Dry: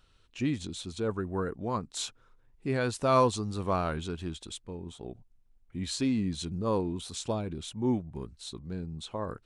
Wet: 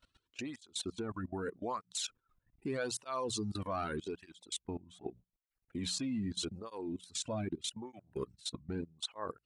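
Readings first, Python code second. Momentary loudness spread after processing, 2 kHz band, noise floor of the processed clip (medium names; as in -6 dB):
9 LU, -6.0 dB, under -85 dBFS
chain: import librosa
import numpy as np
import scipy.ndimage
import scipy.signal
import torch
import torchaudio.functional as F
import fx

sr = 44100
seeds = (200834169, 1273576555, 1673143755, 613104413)

y = fx.dereverb_blind(x, sr, rt60_s=0.86)
y = fx.peak_eq(y, sr, hz=170.0, db=-4.0, octaves=0.51)
y = fx.hum_notches(y, sr, base_hz=60, count=3)
y = fx.level_steps(y, sr, step_db=21)
y = fx.flanger_cancel(y, sr, hz=0.82, depth_ms=2.6)
y = y * 10.0 ** (8.0 / 20.0)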